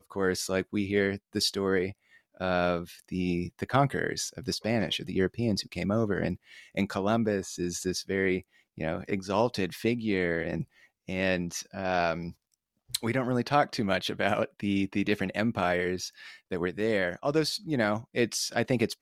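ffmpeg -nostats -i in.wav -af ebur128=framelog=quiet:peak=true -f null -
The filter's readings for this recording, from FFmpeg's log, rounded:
Integrated loudness:
  I:         -29.5 LUFS
  Threshold: -39.7 LUFS
Loudness range:
  LRA:         1.9 LU
  Threshold: -49.9 LUFS
  LRA low:   -30.8 LUFS
  LRA high:  -28.9 LUFS
True peak:
  Peak:       -9.8 dBFS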